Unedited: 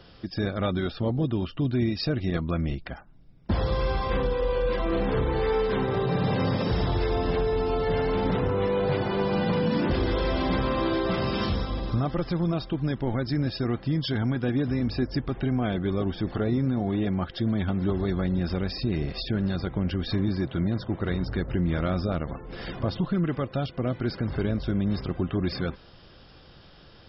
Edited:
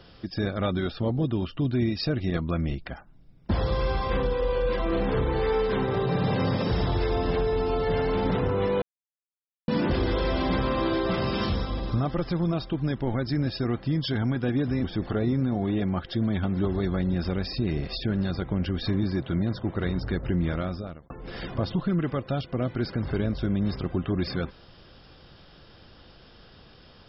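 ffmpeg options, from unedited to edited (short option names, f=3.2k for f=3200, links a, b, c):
-filter_complex "[0:a]asplit=5[a][b][c][d][e];[a]atrim=end=8.82,asetpts=PTS-STARTPTS,afade=t=out:st=8.816:d=0.004:c=hsin[f];[b]atrim=start=8.82:end=9.68,asetpts=PTS-STARTPTS,volume=0[g];[c]atrim=start=9.68:end=14.842,asetpts=PTS-STARTPTS,afade=t=in:d=0.004:c=hsin[h];[d]atrim=start=16.088:end=22.35,asetpts=PTS-STARTPTS,afade=t=out:st=5.582:d=0.68[i];[e]atrim=start=22.35,asetpts=PTS-STARTPTS,afade=t=in:d=0.004:c=hsin[j];[f][g][h]concat=n=3:v=0:a=1[k];[i][j]concat=n=2:v=0:a=1[l];[k][l]acrossfade=d=0.004:c1=hsin:c2=hsin"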